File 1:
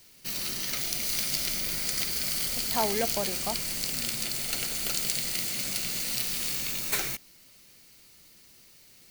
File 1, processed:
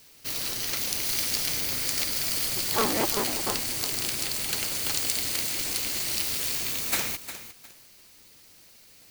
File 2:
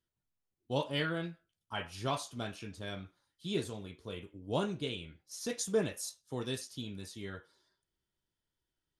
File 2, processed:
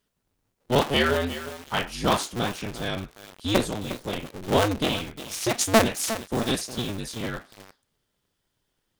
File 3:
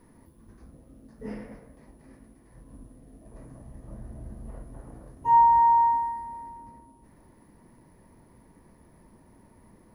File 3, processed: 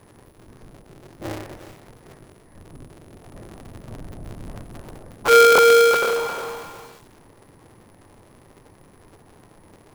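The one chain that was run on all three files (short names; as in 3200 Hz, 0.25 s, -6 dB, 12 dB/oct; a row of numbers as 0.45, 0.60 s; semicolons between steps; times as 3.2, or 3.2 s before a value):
cycle switcher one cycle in 2, inverted; bell 61 Hz -11.5 dB 0.43 oct; lo-fi delay 0.356 s, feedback 35%, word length 7-bit, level -11 dB; normalise peaks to -6 dBFS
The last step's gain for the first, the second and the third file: +1.5, +12.0, +6.0 dB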